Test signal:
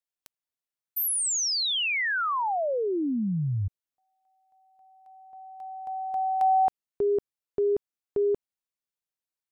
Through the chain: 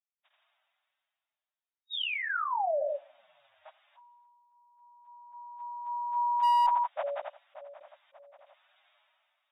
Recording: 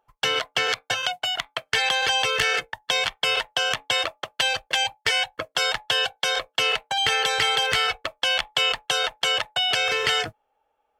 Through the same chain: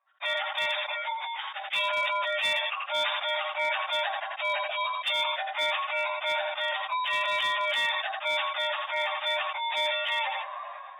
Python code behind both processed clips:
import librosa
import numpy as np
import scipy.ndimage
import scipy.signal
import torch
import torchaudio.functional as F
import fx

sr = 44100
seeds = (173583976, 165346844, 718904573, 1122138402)

y = fx.partial_stretch(x, sr, pct=121)
y = fx.brickwall_bandpass(y, sr, low_hz=560.0, high_hz=3800.0)
y = fx.echo_feedback(y, sr, ms=84, feedback_pct=17, wet_db=-23)
y = fx.clip_asym(y, sr, top_db=-21.5, bottom_db=-20.5)
y = fx.sustainer(y, sr, db_per_s=23.0)